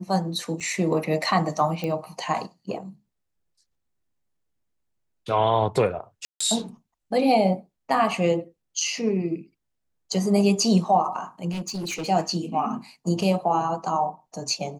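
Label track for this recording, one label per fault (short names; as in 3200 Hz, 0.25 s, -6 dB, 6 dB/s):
0.600000	0.610000	gap 6.6 ms
1.840000	1.840000	pop -16 dBFS
6.250000	6.410000	gap 0.155 s
11.500000	12.070000	clipped -27 dBFS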